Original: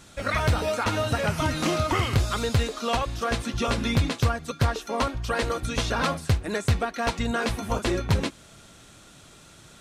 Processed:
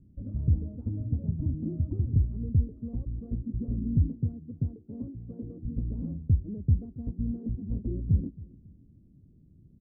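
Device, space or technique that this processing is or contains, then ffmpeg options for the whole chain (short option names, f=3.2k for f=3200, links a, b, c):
the neighbour's flat through the wall: -filter_complex "[0:a]asettb=1/sr,asplit=3[a][b][c];[a]atrim=end=4.144[d];[b]atrim=start=4.14:end=5.65,asetpts=PTS-STARTPTS,afade=t=in:d=0.004:c=qsin,afade=t=out:st=1.506:d=0.004:c=qsin,highpass=130[e];[c]atrim=start=5.646[f];[d][e]acrossfade=d=0.004:c1=hsin:c2=qsin[g];[g][f]acrossfade=d=0.004:c1=qsin:c2=hsin,lowpass=f=270:w=0.5412,lowpass=f=270:w=1.3066,equalizer=f=82:t=o:w=0.4:g=4,asplit=2[h][i];[i]adelay=275,lowpass=f=2k:p=1,volume=-20dB,asplit=2[j][k];[k]adelay=275,lowpass=f=2k:p=1,volume=0.31[l];[h][j][l]amix=inputs=3:normalize=0,volume=-2dB"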